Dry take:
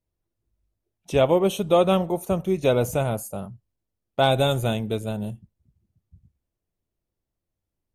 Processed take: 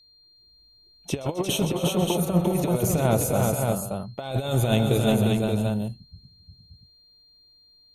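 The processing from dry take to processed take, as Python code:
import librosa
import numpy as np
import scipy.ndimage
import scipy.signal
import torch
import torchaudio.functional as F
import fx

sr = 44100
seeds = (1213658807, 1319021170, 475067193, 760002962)

y = fx.over_compress(x, sr, threshold_db=-25.0, ratio=-0.5)
y = fx.echo_multitap(y, sr, ms=(125, 265, 353, 491, 577), db=(-15.5, -14.0, -3.5, -12.5, -4.5))
y = y + 10.0 ** (-56.0 / 20.0) * np.sin(2.0 * np.pi * 4200.0 * np.arange(len(y)) / sr)
y = y * librosa.db_to_amplitude(1.5)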